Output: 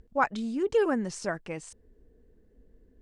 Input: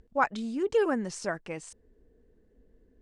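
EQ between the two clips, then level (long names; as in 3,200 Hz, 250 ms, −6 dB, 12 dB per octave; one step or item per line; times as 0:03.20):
low-shelf EQ 200 Hz +4 dB
0.0 dB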